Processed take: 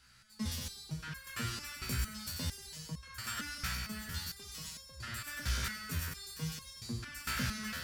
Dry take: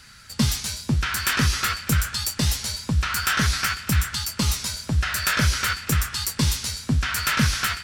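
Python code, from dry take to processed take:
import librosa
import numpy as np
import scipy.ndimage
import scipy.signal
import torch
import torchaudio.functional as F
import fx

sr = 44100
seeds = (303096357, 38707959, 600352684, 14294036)

y = fx.echo_split(x, sr, split_hz=1100.0, low_ms=184, high_ms=97, feedback_pct=52, wet_db=-6)
y = fx.rev_schroeder(y, sr, rt60_s=0.94, comb_ms=33, drr_db=7.0)
y = fx.resonator_held(y, sr, hz=4.4, low_hz=63.0, high_hz=540.0)
y = y * librosa.db_to_amplitude(-7.5)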